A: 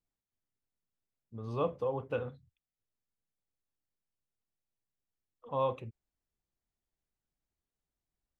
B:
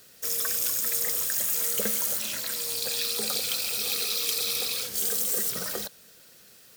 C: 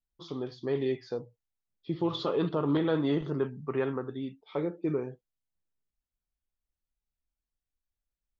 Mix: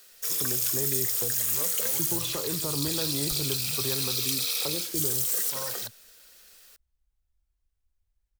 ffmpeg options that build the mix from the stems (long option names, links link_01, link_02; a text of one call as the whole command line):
ffmpeg -i stem1.wav -i stem2.wav -i stem3.wav -filter_complex "[0:a]volume=-7dB[link_01];[1:a]highpass=frequency=830:poles=1,volume=0dB[link_02];[2:a]lowshelf=frequency=120:width_type=q:width=1.5:gain=11.5,adelay=100,volume=2dB[link_03];[link_01][link_02][link_03]amix=inputs=3:normalize=0,acrossover=split=150|3000[link_04][link_05][link_06];[link_05]acompressor=threshold=-35dB:ratio=3[link_07];[link_04][link_07][link_06]amix=inputs=3:normalize=0" out.wav